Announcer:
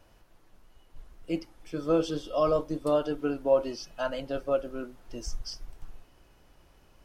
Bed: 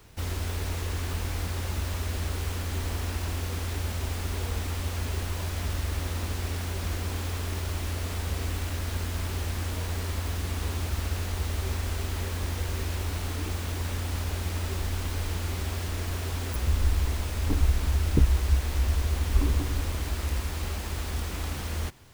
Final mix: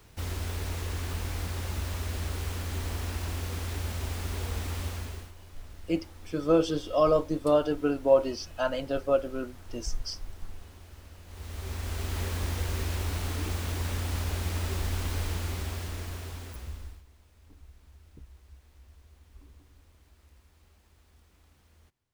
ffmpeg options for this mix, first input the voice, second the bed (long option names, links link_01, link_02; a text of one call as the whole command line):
ffmpeg -i stem1.wav -i stem2.wav -filter_complex "[0:a]adelay=4600,volume=2.5dB[link_01];[1:a]volume=17dB,afade=type=out:start_time=4.83:duration=0.5:silence=0.133352,afade=type=in:start_time=11.25:duration=0.97:silence=0.105925,afade=type=out:start_time=15.18:duration=1.85:silence=0.0354813[link_02];[link_01][link_02]amix=inputs=2:normalize=0" out.wav